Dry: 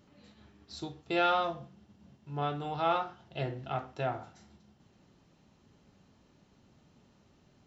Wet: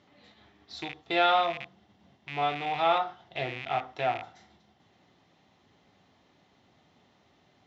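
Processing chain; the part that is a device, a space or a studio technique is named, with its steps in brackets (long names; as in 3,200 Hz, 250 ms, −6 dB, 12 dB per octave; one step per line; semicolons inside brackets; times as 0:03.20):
car door speaker with a rattle (loose part that buzzes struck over −46 dBFS, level −31 dBFS; loudspeaker in its box 98–6,600 Hz, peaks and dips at 140 Hz −5 dB, 210 Hz −5 dB, 740 Hz +8 dB, 1,100 Hz +3 dB, 2,000 Hz +9 dB, 3,500 Hz +8 dB)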